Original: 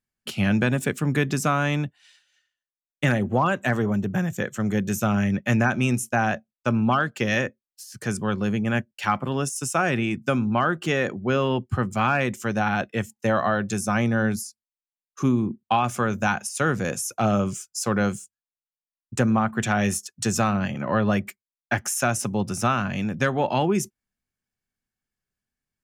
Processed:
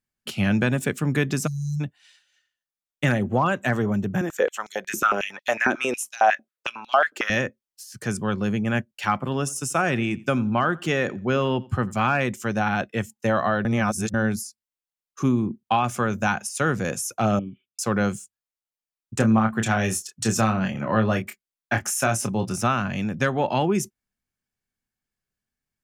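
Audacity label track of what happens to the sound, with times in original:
1.470000	1.800000	time-frequency box erased 210–3,900 Hz
4.210000	7.300000	high-pass on a step sequencer 11 Hz 320–4,000 Hz
9.220000	11.960000	repeating echo 87 ms, feedback 23%, level −23 dB
13.650000	14.140000	reverse
17.390000	17.790000	formant resonators in series i
19.150000	22.560000	double-tracking delay 27 ms −7 dB

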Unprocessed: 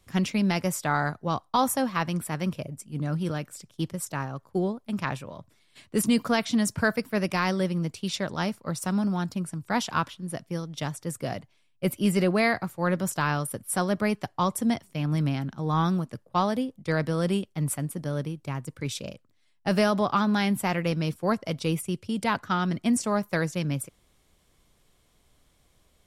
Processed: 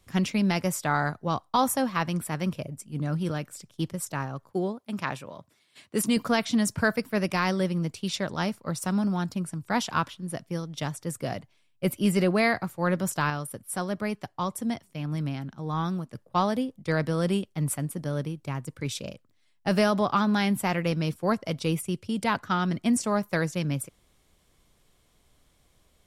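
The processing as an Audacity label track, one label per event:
4.510000	6.170000	high-pass filter 200 Hz 6 dB per octave
13.300000	16.150000	clip gain −4.5 dB

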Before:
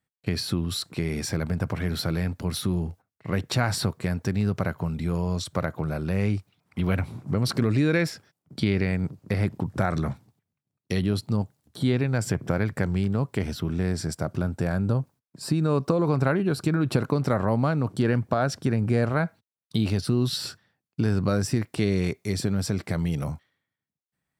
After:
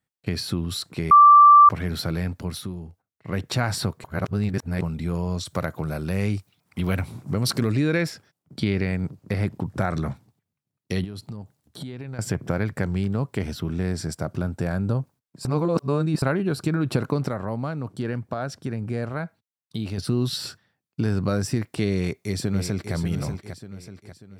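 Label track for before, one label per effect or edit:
1.110000	1.690000	beep over 1,170 Hz −7.5 dBFS
2.360000	3.420000	duck −9 dB, fades 0.39 s
4.040000	4.810000	reverse
5.470000	7.720000	high-shelf EQ 4,500 Hz +8.5 dB
11.040000	12.190000	downward compressor 16 to 1, threshold −30 dBFS
15.450000	16.220000	reverse
17.280000	19.980000	clip gain −5.5 dB
21.940000	22.940000	delay throw 590 ms, feedback 45%, level −8 dB

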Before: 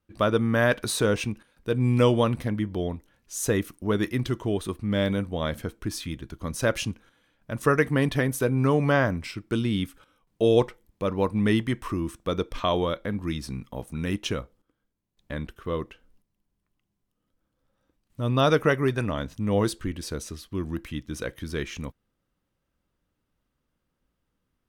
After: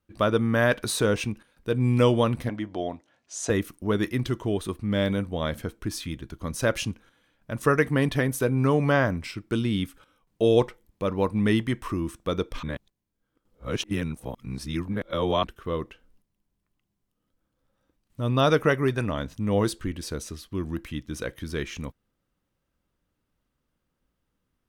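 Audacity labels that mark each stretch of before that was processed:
2.490000	3.500000	loudspeaker in its box 170–7,800 Hz, peaks and dips at 190 Hz −8 dB, 430 Hz −5 dB, 680 Hz +9 dB
12.630000	15.440000	reverse

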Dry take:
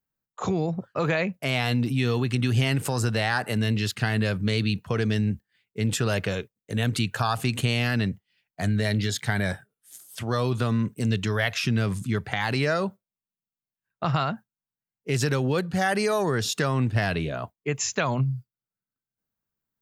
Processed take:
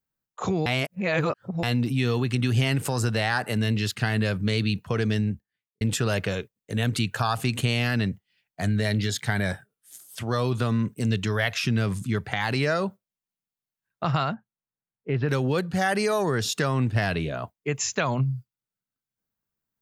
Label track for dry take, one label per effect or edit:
0.660000	1.630000	reverse
5.110000	5.810000	fade out and dull
14.340000	15.290000	Gaussian smoothing sigma 3.4 samples

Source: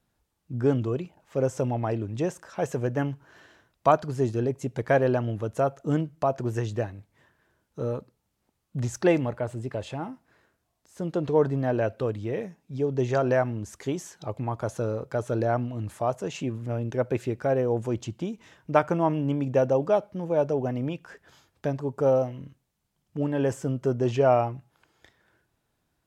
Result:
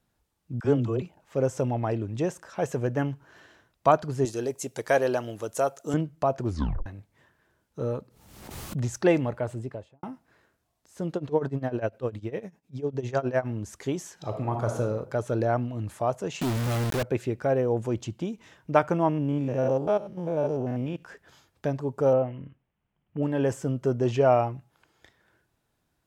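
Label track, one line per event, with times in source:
0.600000	1.020000	all-pass dispersion lows, late by 48 ms, half as late at 530 Hz
4.250000	5.940000	bass and treble bass −12 dB, treble +13 dB
6.450000	6.450000	tape stop 0.41 s
7.950000	8.800000	background raised ahead of every attack at most 52 dB per second
9.510000	10.030000	fade out and dull
11.150000	13.490000	amplitude tremolo 9.9 Hz, depth 87%
14.130000	14.800000	thrown reverb, RT60 0.88 s, DRR 3 dB
16.410000	17.030000	log-companded quantiser 2 bits
19.090000	21.030000	spectrum averaged block by block every 100 ms
22.130000	23.230000	Butterworth low-pass 3,100 Hz 48 dB per octave

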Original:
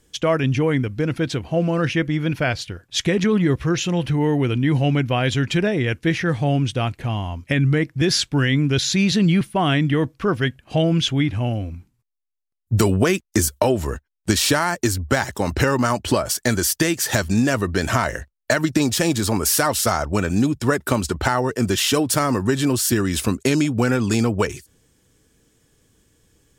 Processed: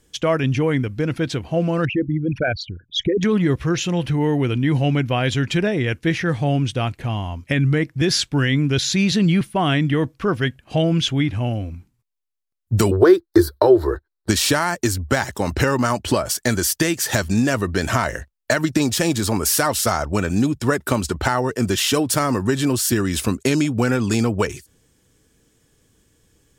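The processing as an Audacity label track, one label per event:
1.850000	3.230000	spectral envelope exaggerated exponent 3
12.910000	14.290000	drawn EQ curve 100 Hz 0 dB, 230 Hz −19 dB, 340 Hz +12 dB, 590 Hz +1 dB, 1,100 Hz +3 dB, 1,600 Hz +3 dB, 2,700 Hz −19 dB, 4,100 Hz +5 dB, 6,600 Hz −20 dB, 13,000 Hz −6 dB

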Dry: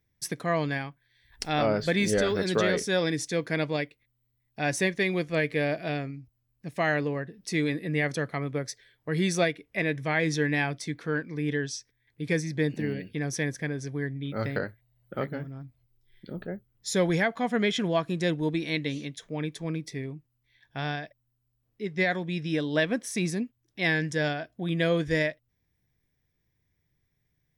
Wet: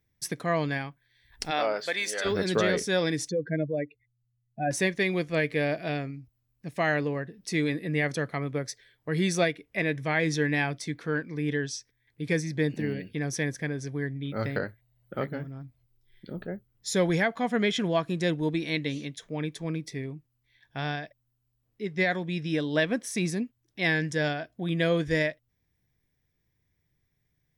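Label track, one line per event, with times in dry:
1.500000	2.240000	high-pass filter 400 Hz → 960 Hz
3.290000	4.710000	expanding power law on the bin magnitudes exponent 2.7

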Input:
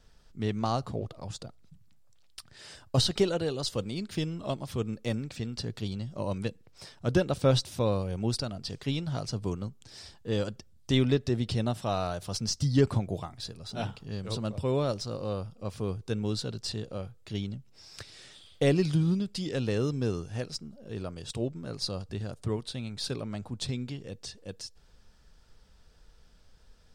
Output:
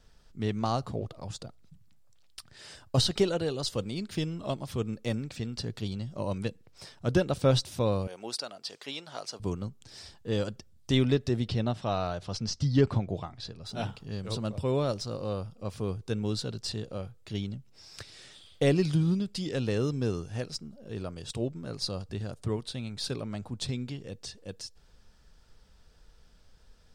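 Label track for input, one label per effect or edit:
8.070000	9.400000	high-pass filter 530 Hz
11.480000	13.650000	low-pass filter 5,100 Hz

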